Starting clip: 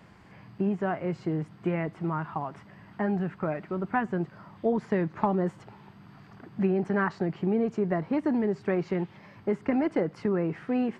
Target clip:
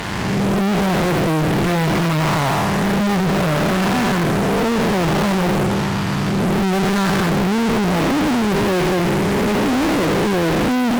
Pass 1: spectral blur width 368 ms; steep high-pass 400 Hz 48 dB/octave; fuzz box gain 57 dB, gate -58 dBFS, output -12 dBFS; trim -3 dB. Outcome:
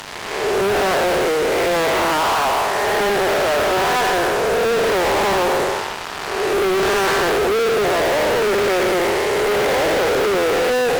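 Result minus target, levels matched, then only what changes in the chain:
500 Hz band +4.5 dB
remove: steep high-pass 400 Hz 48 dB/octave

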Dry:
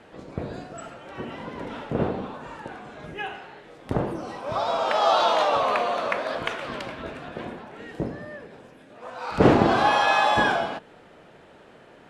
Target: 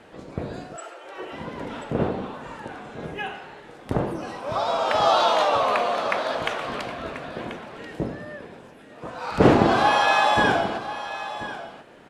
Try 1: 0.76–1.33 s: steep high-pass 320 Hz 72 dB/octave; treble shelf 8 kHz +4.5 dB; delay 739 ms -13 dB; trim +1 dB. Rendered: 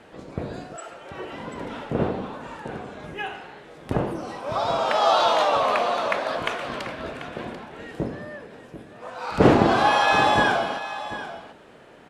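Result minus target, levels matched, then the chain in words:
echo 297 ms early
0.76–1.33 s: steep high-pass 320 Hz 72 dB/octave; treble shelf 8 kHz +4.5 dB; delay 1036 ms -13 dB; trim +1 dB

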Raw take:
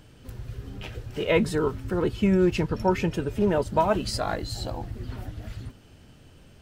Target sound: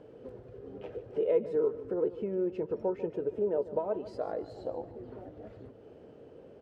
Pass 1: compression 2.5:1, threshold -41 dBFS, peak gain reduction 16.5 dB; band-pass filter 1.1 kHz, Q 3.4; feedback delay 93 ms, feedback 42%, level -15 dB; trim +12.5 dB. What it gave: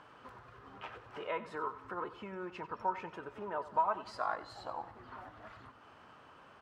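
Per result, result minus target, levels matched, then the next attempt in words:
1 kHz band +16.0 dB; echo 54 ms early
compression 2.5:1, threshold -41 dBFS, peak gain reduction 16.5 dB; band-pass filter 470 Hz, Q 3.4; feedback delay 93 ms, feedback 42%, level -15 dB; trim +12.5 dB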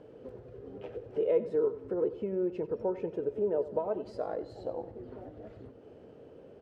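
echo 54 ms early
compression 2.5:1, threshold -41 dBFS, peak gain reduction 16.5 dB; band-pass filter 470 Hz, Q 3.4; feedback delay 147 ms, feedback 42%, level -15 dB; trim +12.5 dB

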